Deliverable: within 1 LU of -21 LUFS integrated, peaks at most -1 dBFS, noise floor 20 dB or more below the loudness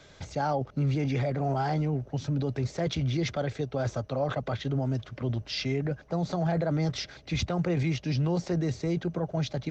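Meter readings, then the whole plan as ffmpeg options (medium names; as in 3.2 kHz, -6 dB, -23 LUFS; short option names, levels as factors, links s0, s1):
loudness -30.0 LUFS; peak level -19.0 dBFS; loudness target -21.0 LUFS
-> -af "volume=2.82"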